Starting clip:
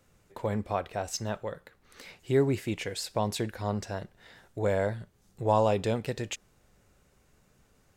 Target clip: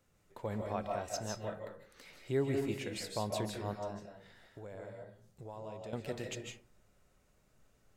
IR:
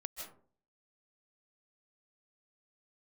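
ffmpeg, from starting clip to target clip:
-filter_complex "[0:a]asettb=1/sr,asplit=3[a][b][c];[a]atrim=end=3.734[d];[b]atrim=start=3.73:end=5.93,asetpts=PTS-STARTPTS,afade=t=in:d=0.004:c=qsin,afade=t=out:st=2.196:d=0.004:c=qsin,acompressor=threshold=-42dB:ratio=3[e];[c]atrim=start=5.926[f];[d][e]acrossfade=d=0.004:c1=hsin:c2=qsin[g];[g][f]acrossfade=d=0.004:c1=qsin:c2=hsin[h];[1:a]atrim=start_sample=2205[i];[h][i]afir=irnorm=-1:irlink=0,volume=-4dB"

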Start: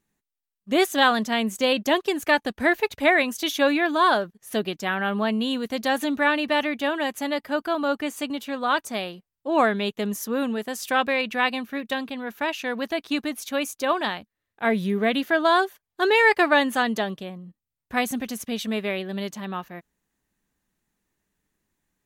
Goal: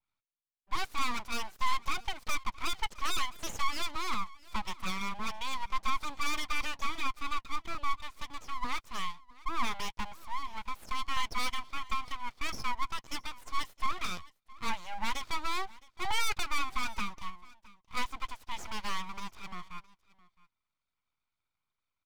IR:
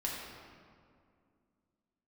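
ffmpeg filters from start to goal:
-filter_complex "[0:a]adynamicequalizer=threshold=0.01:dfrequency=4500:dqfactor=0.71:tfrequency=4500:tqfactor=0.71:attack=5:release=100:ratio=0.375:range=3:mode=boostabove:tftype=bell,asplit=3[a][b][c];[a]bandpass=f=530:t=q:w=8,volume=0dB[d];[b]bandpass=f=1.84k:t=q:w=8,volume=-6dB[e];[c]bandpass=f=2.48k:t=q:w=8,volume=-9dB[f];[d][e][f]amix=inputs=3:normalize=0,asettb=1/sr,asplit=3[g][h][i];[g]atrim=end=10.264[j];[h]atrim=start=10.26:end=11.17,asetpts=PTS-STARTPTS,afade=t=in:d=0.004:c=qsin,afade=t=out:st=0.906:d=0.004:c=qsin,acrossover=split=160|3000[k][l][m];[l]acompressor=threshold=-41dB:ratio=2[n];[k][n][m]amix=inputs=3:normalize=0[o];[i]atrim=start=11.166[p];[j][o]acrossfade=d=0.004:c1=hsin:c2=qsin[q];[q][p]acrossfade=d=0.004:c1=qsin:c2=hsin,asplit=2[r][s];[s]alimiter=limit=-23dB:level=0:latency=1:release=129,volume=-1.5dB[t];[r][t]amix=inputs=2:normalize=0,asplit=3[u][v][w];[u]afade=t=out:st=7.97:d=0.02[x];[v]acompressor=threshold=-33dB:ratio=6,afade=t=in:st=7.97:d=0.02,afade=t=out:st=8.55:d=0.02[y];[w]afade=t=in:st=8.55:d=0.02[z];[x][y][z]amix=inputs=3:normalize=0,asoftclip=type=tanh:threshold=-23.5dB,lowshelf=f=310:t=q:w=1.5:g=-9,aeval=exprs='abs(val(0))':c=same,asplit=2[aa][ab];[ab]aecho=0:1:664:0.0794[ac];[aa][ac]amix=inputs=2:normalize=0"

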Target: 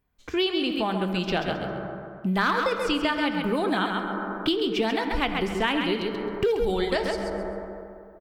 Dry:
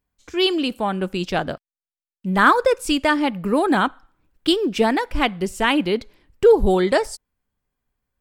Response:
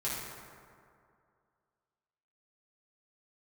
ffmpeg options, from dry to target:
-filter_complex "[0:a]volume=7dB,asoftclip=hard,volume=-7dB,equalizer=f=7.6k:t=o:w=1.3:g=-8,aecho=1:1:133|266|399:0.473|0.0994|0.0209,asplit=2[a][b];[1:a]atrim=start_sample=2205,lowpass=4.7k[c];[b][c]afir=irnorm=-1:irlink=0,volume=-11dB[d];[a][d]amix=inputs=2:normalize=0,acrossover=split=2800|6200[e][f][g];[e]acompressor=threshold=-28dB:ratio=4[h];[f]acompressor=threshold=-34dB:ratio=4[i];[g]acompressor=threshold=-60dB:ratio=4[j];[h][i][j]amix=inputs=3:normalize=0,volume=3dB"

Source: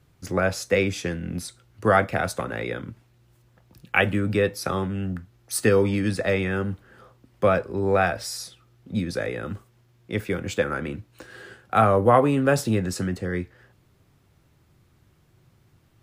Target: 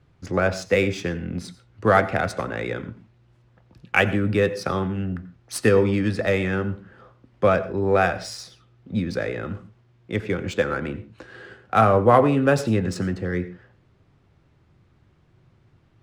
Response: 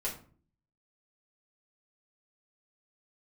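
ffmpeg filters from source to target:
-filter_complex "[0:a]adynamicsmooth=sensitivity=4:basefreq=4.4k,asplit=2[a][b];[1:a]atrim=start_sample=2205,afade=t=out:st=0.14:d=0.01,atrim=end_sample=6615,adelay=85[c];[b][c]afir=irnorm=-1:irlink=0,volume=-18dB[d];[a][d]amix=inputs=2:normalize=0,volume=1.5dB"

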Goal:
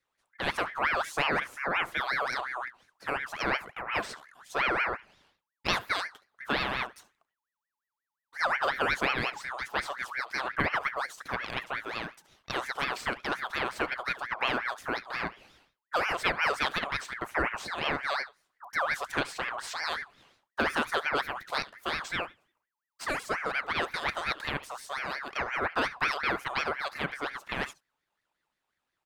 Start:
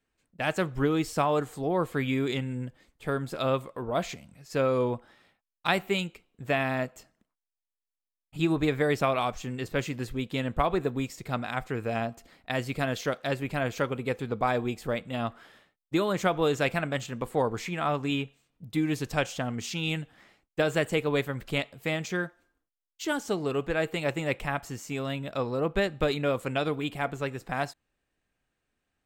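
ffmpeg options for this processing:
-filter_complex "[0:a]asettb=1/sr,asplit=3[a][b][c];[a]atrim=end=11.814[d];[b]atrim=start=11.81:end=12.54,asetpts=PTS-STARTPTS,afade=t=in:d=0.004:c=qsin,afade=t=out:st=0.726:d=0.004:c=qsin,lowshelf=f=400:g=-10.5[e];[c]atrim=start=12.536[f];[d][e]acrossfade=d=0.004:c1=hsin:c2=qsin[g];[g][f]acrossfade=d=0.004:c1=qsin:c2=hsin,aecho=1:1:71:0.112,aeval=exprs='val(0)*sin(2*PI*1400*n/s+1400*0.4/5.6*sin(2*PI*5.6*n/s))':c=same"

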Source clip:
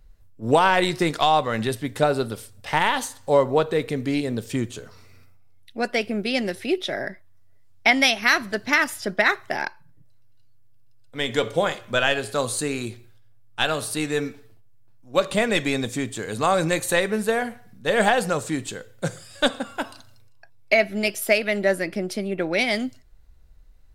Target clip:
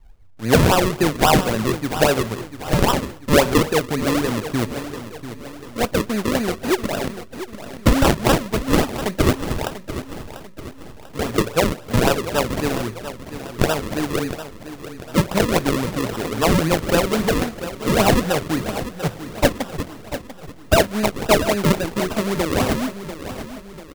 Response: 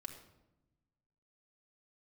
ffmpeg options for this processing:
-af "acrusher=samples=40:mix=1:aa=0.000001:lfo=1:lforange=40:lforate=3.7,aecho=1:1:692|1384|2076|2768|3460:0.251|0.118|0.0555|0.0261|0.0123,volume=3.5dB"

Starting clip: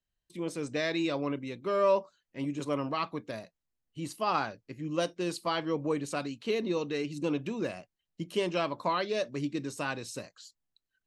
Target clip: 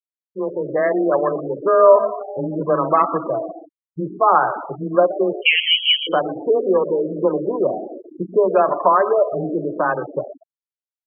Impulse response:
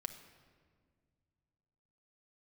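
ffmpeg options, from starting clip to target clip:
-filter_complex "[0:a]asettb=1/sr,asplit=3[a][b][c];[a]atrim=end=2.534[d];[b]atrim=start=2.53:end=4,asetpts=PTS-STARTPTS,afade=t=in:d=0.004:c=qsin,afade=t=out:st=1.466:d=0.004:c=qsin,aecho=1:1:6.3:0.52,atrim=end_sample=64827[e];[c]atrim=start=3.996[f];[d][e]acrossfade=d=0.004:c1=hsin:c2=qsin[g];[g][f]acrossfade=d=0.004:c1=qsin:c2=hsin,asplit=2[h][i];[i]acrossover=split=250 2200:gain=0.158 1 0.224[j][k][l];[j][k][l]amix=inputs=3:normalize=0[m];[1:a]atrim=start_sample=2205[n];[m][n]afir=irnorm=-1:irlink=0,volume=6.5dB[o];[h][o]amix=inputs=2:normalize=0,asettb=1/sr,asplit=3[p][q][r];[p]atrim=end=5.414[s];[q]atrim=start=5.41:end=6.07,asetpts=PTS-STARTPTS,afade=t=in:d=0.004:c=qsin,afade=t=out:st=0.656:d=0.004:c=qsin,lowpass=f=2.9k:t=q:w=0.5098,lowpass=f=2.9k:t=q:w=0.6013,lowpass=f=2.9k:t=q:w=0.9,lowpass=f=2.9k:t=q:w=2.563,afreqshift=-3400[t];[r]atrim=start=6.066[u];[s][t]acrossfade=d=0.004:c1=hsin:c2=qsin[v];[v][u]acrossfade=d=0.004:c1=qsin:c2=hsin,afwtdn=0.0158,afreqshift=17,adynamicequalizer=threshold=0.00224:dfrequency=160:dqfactor=7.2:tfrequency=160:tqfactor=7.2:attack=5:release=100:ratio=0.375:range=3:mode=cutabove:tftype=bell,asplit=4[w][x][y][z];[x]adelay=120,afreqshift=58,volume=-16.5dB[aa];[y]adelay=240,afreqshift=116,volume=-25.6dB[ab];[z]adelay=360,afreqshift=174,volume=-34.7dB[ac];[w][aa][ab][ac]amix=inputs=4:normalize=0,asplit=2[ad][ae];[ae]acompressor=threshold=-33dB:ratio=8,volume=-0.5dB[af];[ad][af]amix=inputs=2:normalize=0,afftfilt=real='re*gte(hypot(re,im),0.0398)':imag='im*gte(hypot(re,im),0.0398)':win_size=1024:overlap=0.75,dynaudnorm=f=150:g=9:m=4dB,volume=3dB"

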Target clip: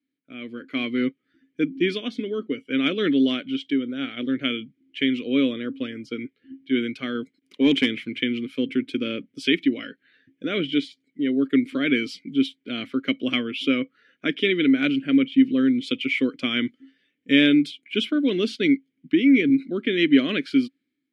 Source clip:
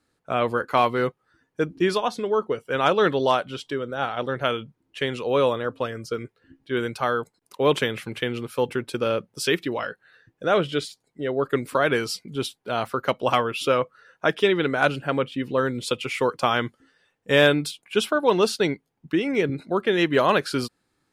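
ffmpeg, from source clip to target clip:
-filter_complex "[0:a]asplit=3[a][b][c];[a]bandpass=f=270:t=q:w=8,volume=0dB[d];[b]bandpass=f=2.29k:t=q:w=8,volume=-6dB[e];[c]bandpass=f=3.01k:t=q:w=8,volume=-9dB[f];[d][e][f]amix=inputs=3:normalize=0,asettb=1/sr,asplit=3[g][h][i];[g]atrim=end=7.154[j];[h]atrim=start=7.15:end=7.95,asetpts=PTS-STARTPTS,afade=t=in:d=0.004:c=qsin,afade=t=out:st=0.796:d=0.004:c=qsin,aeval=exprs='0.106*(cos(1*acos(clip(val(0)/0.106,-1,1)))-cos(1*PI/2))+0.00596*(cos(5*acos(clip(val(0)/0.106,-1,1)))-cos(5*PI/2))':c=same[k];[i]atrim=start=7.946[l];[j][k]acrossfade=d=0.004:c1=hsin:c2=qsin[m];[m][l]acrossfade=d=0.004:c1=qsin:c2=hsin,dynaudnorm=f=210:g=7:m=13.5dB"

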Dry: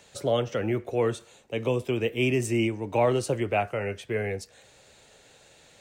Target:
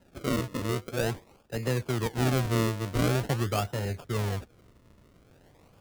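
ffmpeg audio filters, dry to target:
-af "asubboost=boost=3.5:cutoff=220,acrusher=samples=38:mix=1:aa=0.000001:lfo=1:lforange=38:lforate=0.46,volume=-3.5dB"

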